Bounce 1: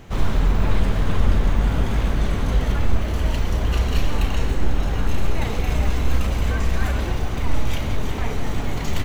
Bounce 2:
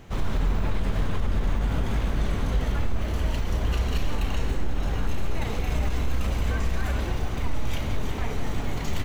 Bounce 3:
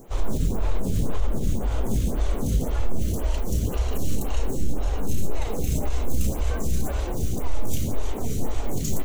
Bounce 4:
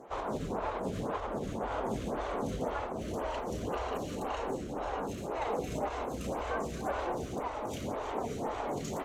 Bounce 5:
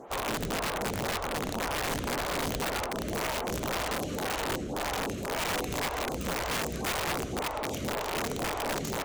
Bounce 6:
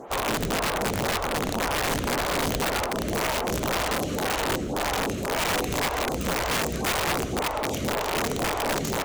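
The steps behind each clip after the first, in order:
peak limiter -11.5 dBFS, peak gain reduction 6.5 dB; trim -4 dB
FFT filter 510 Hz 0 dB, 1.8 kHz -11 dB, 4.9 kHz -1 dB, 7 kHz +8 dB; lamp-driven phase shifter 1.9 Hz; trim +5.5 dB
band-pass filter 970 Hz, Q 1; trim +4.5 dB
integer overflow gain 29 dB; trim +4 dB
reverberation RT60 0.30 s, pre-delay 95 ms, DRR 24.5 dB; trim +5.5 dB

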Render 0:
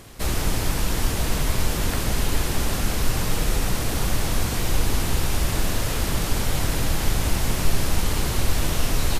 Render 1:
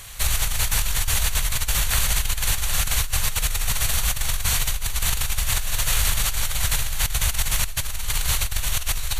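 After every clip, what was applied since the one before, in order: amplifier tone stack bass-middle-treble 10-0-10; band-stop 5.1 kHz, Q 5.9; compressor with a negative ratio -29 dBFS, ratio -1; trim +7.5 dB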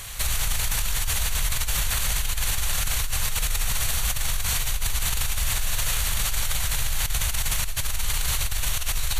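peak limiter -17.5 dBFS, peak gain reduction 10 dB; trim +3 dB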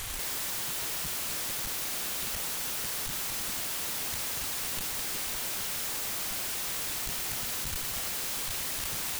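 integer overflow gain 29 dB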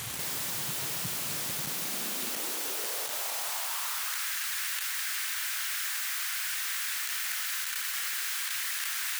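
high-pass sweep 130 Hz -> 1.6 kHz, 1.52–4.32 s

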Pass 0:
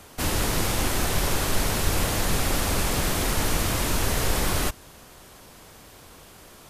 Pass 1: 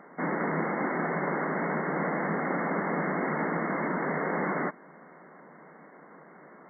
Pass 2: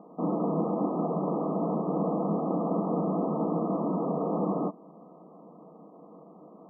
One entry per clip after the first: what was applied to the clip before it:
FFT band-pass 140–2200 Hz
brick-wall FIR low-pass 1.3 kHz; small resonant body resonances 200/300/470/660 Hz, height 11 dB; trim -5.5 dB

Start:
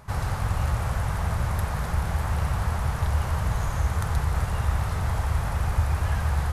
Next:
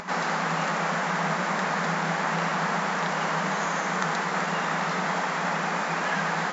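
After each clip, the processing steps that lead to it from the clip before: upward compressor, threshold -36 dBFS; FFT band-pass 160–7600 Hz; peaking EQ 1.9 kHz +4.5 dB 0.9 oct; trim +6.5 dB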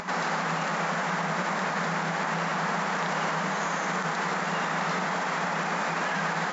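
peak limiter -21 dBFS, peak gain reduction 10 dB; trim +1.5 dB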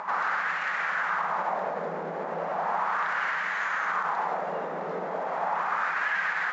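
wah-wah 0.36 Hz 460–1800 Hz, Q 2.2; trim +5 dB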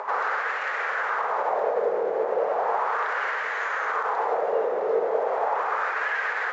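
resonant high-pass 450 Hz, resonance Q 4.9

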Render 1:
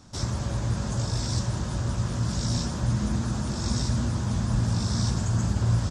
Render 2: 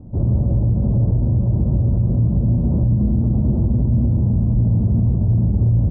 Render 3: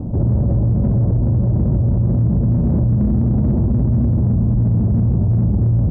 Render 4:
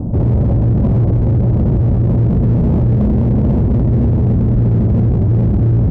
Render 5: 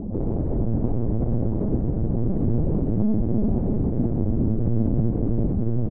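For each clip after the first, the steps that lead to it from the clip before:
inverse Chebyshev low-pass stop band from 3.8 kHz, stop band 80 dB; bass shelf 350 Hz +9.5 dB; peak limiter -16.5 dBFS, peak gain reduction 10.5 dB; trim +6.5 dB
bass shelf 61 Hz -6 dB; in parallel at -5 dB: saturation -25.5 dBFS, distortion -8 dB; on the sum: level flattener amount 50%
hard clipper -14 dBFS, distortion -14 dB; trim +4.5 dB
band-pass filter 360 Hz, Q 0.63; loudspeakers at several distances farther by 18 m -8 dB, 33 m -10 dB, 100 m -10 dB; LPC vocoder at 8 kHz pitch kept; trim -6 dB

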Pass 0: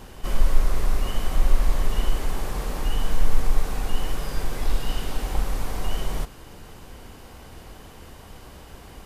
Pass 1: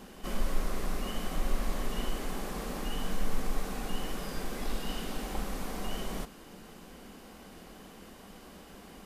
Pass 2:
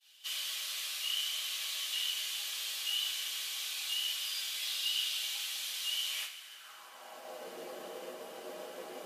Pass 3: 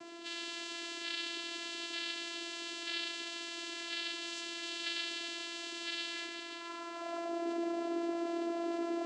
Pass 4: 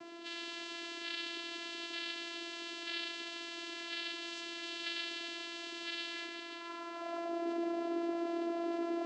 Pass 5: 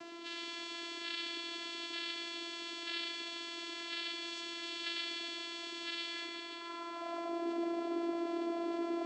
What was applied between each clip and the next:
resonant low shelf 150 Hz -7.5 dB, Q 3; band-stop 920 Hz, Q 17; trim -5 dB
high-pass sweep 3.3 kHz -> 450 Hz, 6.03–7.46 s; expander -46 dBFS; two-slope reverb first 0.21 s, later 2.9 s, from -20 dB, DRR -5 dB
in parallel at -3 dB: compressor with a negative ratio -49 dBFS, ratio -1; on the sum: added noise pink -47 dBFS; vocoder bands 8, saw 339 Hz; trim -1.5 dB
distance through air 81 m
thinning echo 113 ms, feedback 53%, high-pass 210 Hz, level -8 dB; tape noise reduction on one side only encoder only

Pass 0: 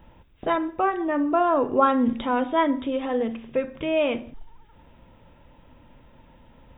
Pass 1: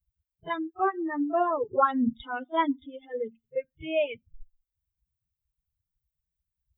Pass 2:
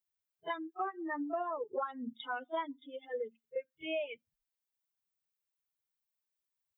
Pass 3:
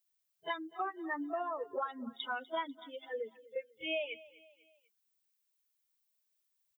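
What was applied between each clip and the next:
expander on every frequency bin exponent 3; pre-echo 34 ms -20 dB
high-pass 430 Hz 12 dB/octave; compression 10:1, threshold -33 dBFS, peak gain reduction 16.5 dB
treble shelf 2.2 kHz +10.5 dB; feedback delay 247 ms, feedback 46%, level -20 dB; trim -2 dB

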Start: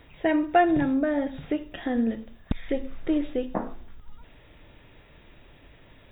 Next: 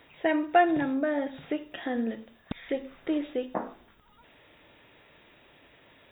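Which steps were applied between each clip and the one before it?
high-pass 380 Hz 6 dB/octave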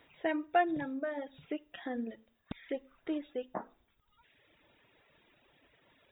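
reverb removal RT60 1.5 s; trim -6.5 dB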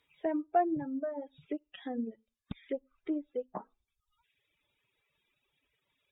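expander on every frequency bin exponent 1.5; low-pass that closes with the level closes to 810 Hz, closed at -36.5 dBFS; trim +3.5 dB

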